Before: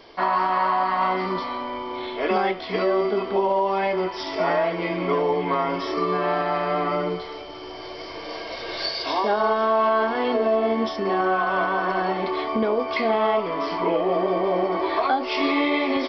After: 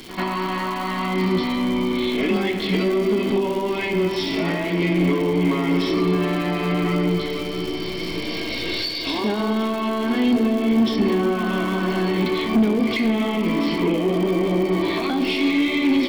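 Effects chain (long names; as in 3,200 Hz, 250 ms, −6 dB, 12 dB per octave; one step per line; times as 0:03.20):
flat-topped bell 3,400 Hz +11 dB
backwards echo 95 ms −17 dB
in parallel at −11.5 dB: hard clipping −17 dBFS, distortion −14 dB
on the sum: hum removal 96.89 Hz, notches 27
on a send at −8 dB: convolution reverb RT60 4.4 s, pre-delay 19 ms
on the sum: downward compressor, threshold −19 dBFS, peak gain reduction 7.5 dB
low shelf with overshoot 400 Hz +13.5 dB, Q 1.5
notch filter 4,900 Hz, Q 7.5
surface crackle 290 per second −25 dBFS
soft clipping −9 dBFS, distortion −18 dB
level −2.5 dB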